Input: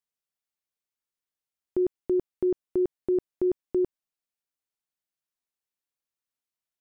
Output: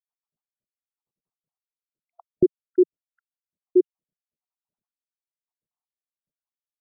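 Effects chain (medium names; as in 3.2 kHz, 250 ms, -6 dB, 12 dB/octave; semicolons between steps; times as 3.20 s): random holes in the spectrogram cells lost 84%; low-pass 1.1 kHz 24 dB/octave; peaking EQ 170 Hz +13 dB 1.1 oct; trim +7 dB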